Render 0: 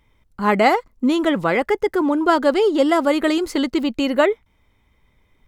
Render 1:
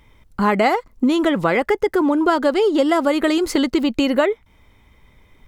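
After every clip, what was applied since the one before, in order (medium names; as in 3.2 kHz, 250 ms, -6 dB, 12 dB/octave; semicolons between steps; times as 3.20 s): compression 3:1, threshold -25 dBFS, peak gain reduction 11.5 dB; trim +8.5 dB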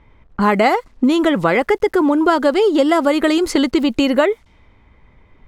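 word length cut 10-bit, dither none; level-controlled noise filter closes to 1.9 kHz, open at -16 dBFS; trim +2.5 dB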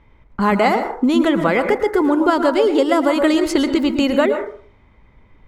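plate-style reverb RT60 0.51 s, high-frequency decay 0.35×, pre-delay 100 ms, DRR 7.5 dB; trim -2 dB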